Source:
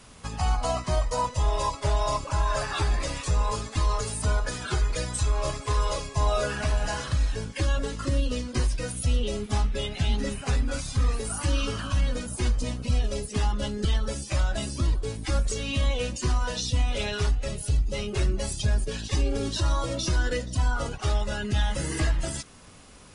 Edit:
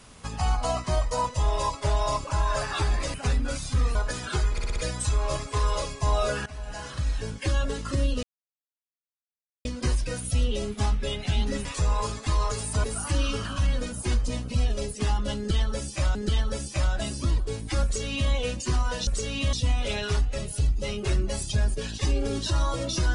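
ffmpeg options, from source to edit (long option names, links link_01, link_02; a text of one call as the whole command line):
ffmpeg -i in.wav -filter_complex "[0:a]asplit=14[link_01][link_02][link_03][link_04][link_05][link_06][link_07][link_08][link_09][link_10][link_11][link_12][link_13][link_14];[link_01]atrim=end=3.142[link_15];[link_02]atrim=start=10.368:end=11.182[link_16];[link_03]atrim=start=4.328:end=4.962[link_17];[link_04]atrim=start=4.898:end=4.962[link_18];[link_05]atrim=start=4.898:end=4.962[link_19];[link_06]atrim=start=4.898:end=4.962[link_20];[link_07]atrim=start=4.898:end=6.6,asetpts=PTS-STARTPTS,afade=type=out:start_time=1.698:duration=0.004:curve=hsin:silence=0.11885[link_21];[link_08]atrim=start=6.6:end=8.37,asetpts=PTS-STARTPTS,afade=type=in:duration=0.88:silence=0.11885,afade=type=out:start_time=1.766:duration=0.004:curve=hsin,apad=pad_dur=1.42[link_22];[link_09]atrim=start=8.37:end=10.372,asetpts=PTS-STARTPTS,afade=type=in:duration=0.004:curve=hsin[link_23];[link_10]atrim=start=3.138:end=4.332[link_24];[link_11]atrim=start=11.178:end=14.492[link_25];[link_12]atrim=start=13.708:end=16.632[link_26];[link_13]atrim=start=15.398:end=15.862[link_27];[link_14]atrim=start=16.628[link_28];[link_15][link_16]acrossfade=duration=0.004:curve1=hsin:curve2=hsin[link_29];[link_29][link_17]acrossfade=duration=0.004:curve1=hsin:curve2=hsin[link_30];[link_30][link_18]acrossfade=duration=0.004:curve1=hsin:curve2=hsin[link_31];[link_31][link_19]acrossfade=duration=0.004:curve1=hsin:curve2=hsin[link_32];[link_32][link_20]acrossfade=duration=0.004:curve1=hsin:curve2=hsin[link_33];[link_21][link_22][link_23]concat=n=3:v=0:a=1[link_34];[link_33][link_34]acrossfade=duration=0.004:curve1=hsin:curve2=hsin[link_35];[link_35][link_24]acrossfade=duration=0.004:curve1=hsin:curve2=hsin[link_36];[link_36][link_25]acrossfade=duration=0.004:curve1=hsin:curve2=hsin[link_37];[link_37][link_26]acrossfade=duration=0.004:curve1=hsin:curve2=hsin[link_38];[link_38][link_27]acrossfade=duration=0.004:curve1=hsin:curve2=hsin[link_39];[link_39][link_28]acrossfade=duration=0.004:curve1=hsin:curve2=hsin" out.wav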